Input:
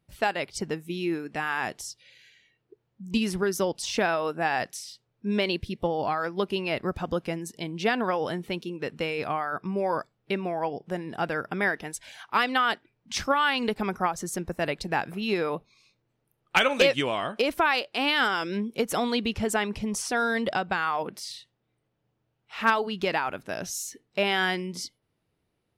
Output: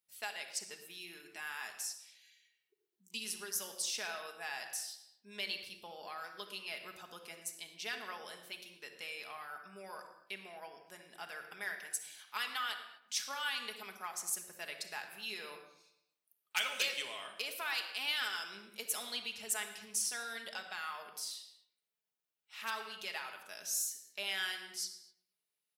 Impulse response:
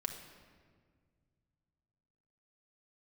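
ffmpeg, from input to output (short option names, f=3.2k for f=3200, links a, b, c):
-filter_complex "[0:a]aeval=exprs='0.398*(cos(1*acos(clip(val(0)/0.398,-1,1)))-cos(1*PI/2))+0.00316*(cos(8*acos(clip(val(0)/0.398,-1,1)))-cos(8*PI/2))':c=same,aderivative,asplit=2[a][b];[b]adelay=113,lowpass=f=2.8k:p=1,volume=-16dB,asplit=2[c][d];[d]adelay=113,lowpass=f=2.8k:p=1,volume=0.5,asplit=2[e][f];[f]adelay=113,lowpass=f=2.8k:p=1,volume=0.5,asplit=2[g][h];[h]adelay=113,lowpass=f=2.8k:p=1,volume=0.5[i];[a][c][e][g][i]amix=inputs=5:normalize=0[j];[1:a]atrim=start_sample=2205,afade=t=out:st=0.31:d=0.01,atrim=end_sample=14112[k];[j][k]afir=irnorm=-1:irlink=0,volume=-1dB"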